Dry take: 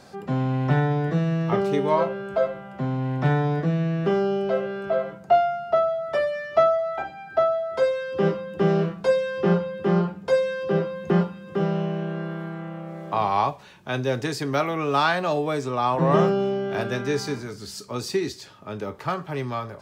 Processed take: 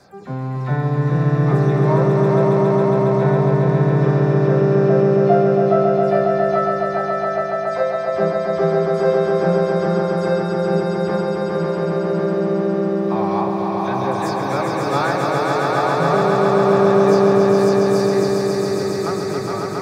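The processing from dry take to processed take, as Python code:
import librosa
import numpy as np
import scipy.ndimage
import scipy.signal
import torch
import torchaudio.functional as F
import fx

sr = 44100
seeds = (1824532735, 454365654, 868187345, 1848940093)

p1 = fx.spec_delay(x, sr, highs='early', ms=104)
p2 = fx.peak_eq(p1, sr, hz=3000.0, db=-13.0, octaves=0.33)
p3 = p2 + fx.echo_swell(p2, sr, ms=137, loudest=5, wet_db=-3.5, dry=0)
y = p3 * 10.0 ** (-1.0 / 20.0)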